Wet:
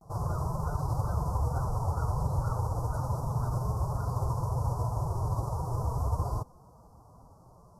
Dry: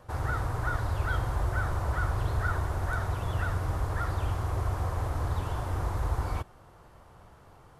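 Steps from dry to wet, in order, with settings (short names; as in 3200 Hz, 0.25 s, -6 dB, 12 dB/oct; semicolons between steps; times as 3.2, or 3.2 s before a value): formant-preserving pitch shift +5 st; vibrato 0.34 Hz 40 cents; elliptic band-stop 1100–5200 Hz, stop band 50 dB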